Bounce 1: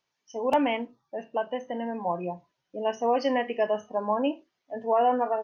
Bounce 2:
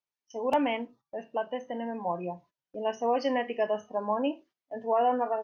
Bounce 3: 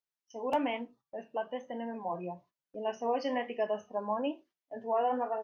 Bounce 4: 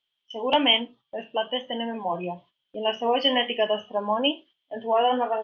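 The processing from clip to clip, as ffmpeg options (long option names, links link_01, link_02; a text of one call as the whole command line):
ffmpeg -i in.wav -af "agate=range=-14dB:threshold=-52dB:ratio=16:detection=peak,volume=-2.5dB" out.wav
ffmpeg -i in.wav -af "flanger=delay=4.4:depth=6.2:regen=-67:speed=1.1:shape=sinusoidal" out.wav
ffmpeg -i in.wav -af "lowpass=frequency=3200:width_type=q:width=16,volume=7.5dB" out.wav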